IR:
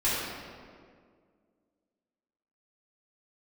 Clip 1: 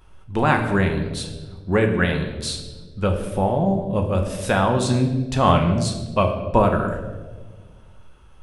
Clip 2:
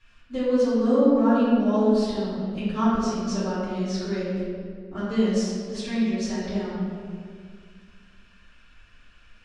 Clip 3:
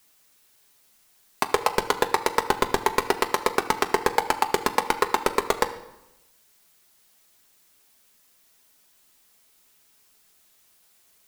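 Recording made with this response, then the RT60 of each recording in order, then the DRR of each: 2; 1.5 s, 2.0 s, 0.95 s; 3.0 dB, -11.5 dB, 5.0 dB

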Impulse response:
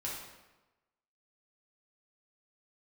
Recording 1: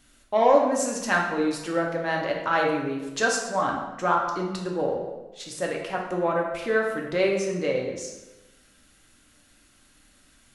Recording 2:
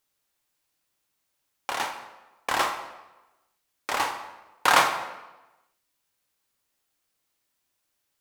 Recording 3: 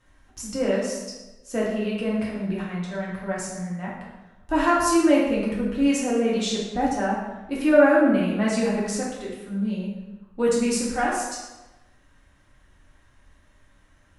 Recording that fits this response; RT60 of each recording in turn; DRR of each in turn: 3; 1.1 s, 1.1 s, 1.1 s; -1.0 dB, 4.5 dB, -5.5 dB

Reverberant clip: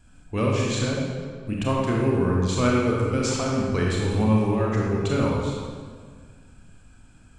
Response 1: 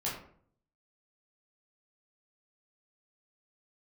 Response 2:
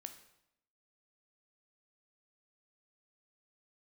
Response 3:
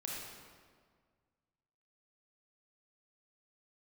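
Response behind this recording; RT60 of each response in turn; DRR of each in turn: 3; 0.55 s, 0.80 s, 1.8 s; -7.0 dB, 7.0 dB, -3.5 dB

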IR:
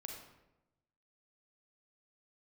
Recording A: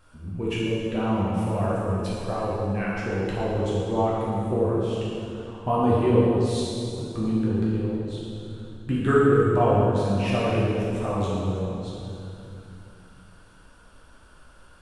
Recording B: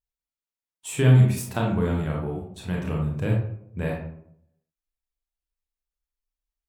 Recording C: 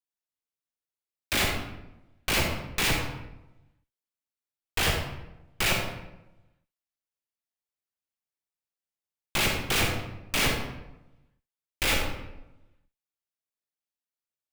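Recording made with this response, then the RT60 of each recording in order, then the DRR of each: C; 2.7 s, 0.70 s, 0.95 s; -7.5 dB, -1.5 dB, 1.0 dB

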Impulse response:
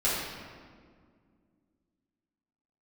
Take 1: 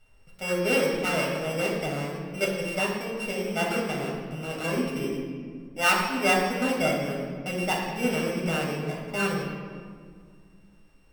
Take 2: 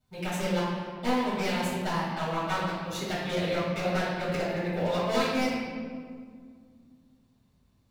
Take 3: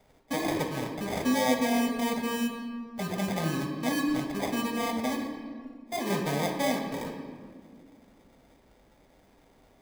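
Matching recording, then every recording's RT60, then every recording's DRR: 2; 2.0 s, 1.9 s, 2.0 s; -4.0 dB, -10.5 dB, 3.0 dB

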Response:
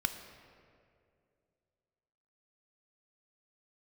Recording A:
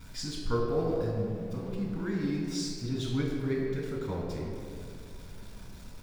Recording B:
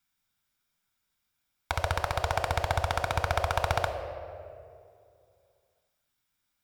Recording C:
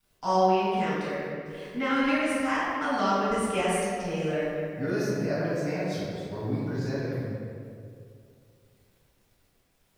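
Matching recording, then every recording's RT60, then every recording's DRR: B; 2.4 s, 2.4 s, 2.4 s; -2.5 dB, 7.0 dB, -9.5 dB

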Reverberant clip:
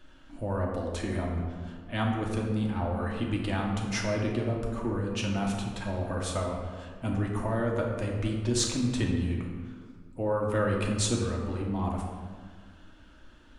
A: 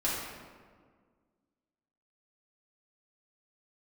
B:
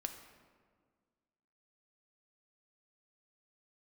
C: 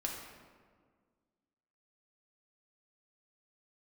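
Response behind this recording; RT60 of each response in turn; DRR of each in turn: C; 1.7 s, 1.7 s, 1.7 s; -8.5 dB, 5.5 dB, -1.5 dB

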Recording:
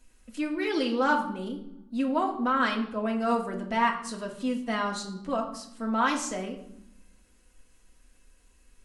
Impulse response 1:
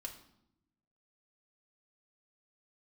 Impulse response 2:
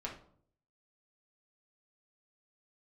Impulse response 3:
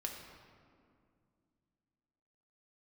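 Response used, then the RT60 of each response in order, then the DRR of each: 1; 0.80 s, 0.60 s, 2.3 s; 0.5 dB, -3.5 dB, 1.0 dB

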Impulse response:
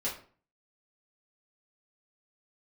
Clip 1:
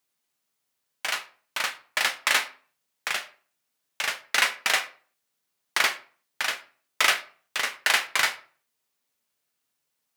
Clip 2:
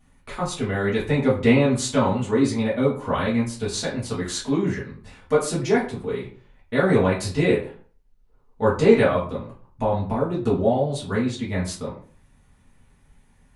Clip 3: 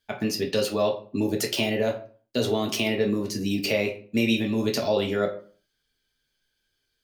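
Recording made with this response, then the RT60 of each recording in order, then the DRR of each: 2; 0.45 s, 0.45 s, 0.45 s; 7.0 dB, -8.0 dB, 1.0 dB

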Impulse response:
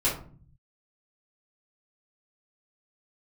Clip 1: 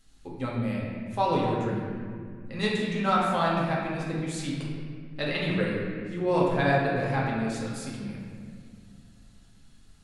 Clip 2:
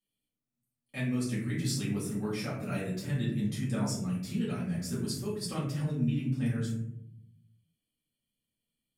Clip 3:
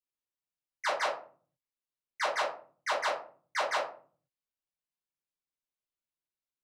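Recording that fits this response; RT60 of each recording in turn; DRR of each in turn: 3; 2.0 s, 0.70 s, 0.45 s; -5.0 dB, -9.0 dB, -9.0 dB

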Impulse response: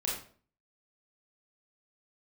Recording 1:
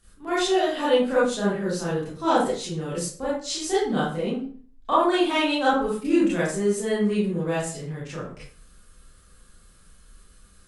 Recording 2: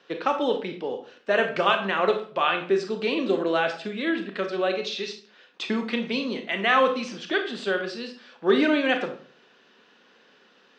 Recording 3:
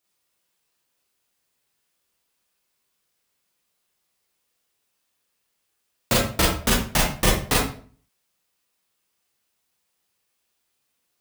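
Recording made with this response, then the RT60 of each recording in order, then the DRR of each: 3; 0.45 s, 0.45 s, 0.45 s; -10.0 dB, 5.0 dB, -4.5 dB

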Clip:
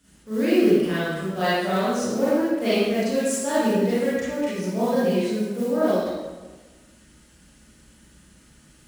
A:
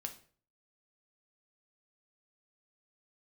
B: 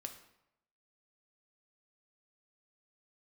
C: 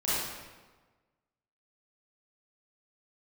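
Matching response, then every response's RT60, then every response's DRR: C; 0.45 s, 0.85 s, 1.3 s; 4.5 dB, 5.0 dB, -11.5 dB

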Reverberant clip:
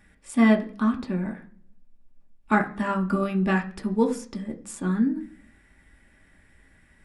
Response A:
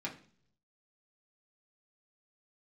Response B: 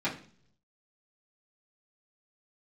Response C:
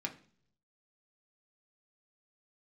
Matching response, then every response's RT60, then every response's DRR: C; 0.50 s, 0.50 s, 0.50 s; -4.0 dB, -10.5 dB, 1.5 dB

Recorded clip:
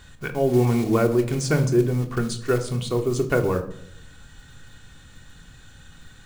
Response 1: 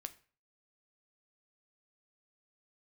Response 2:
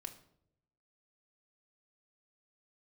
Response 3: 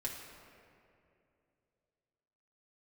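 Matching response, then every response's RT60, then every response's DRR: 2; 0.40 s, no single decay rate, 2.7 s; 9.5 dB, 4.0 dB, -3.5 dB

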